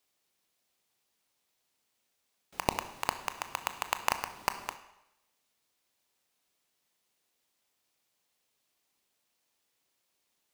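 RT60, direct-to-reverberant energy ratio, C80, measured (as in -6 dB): 0.85 s, 9.0 dB, 14.0 dB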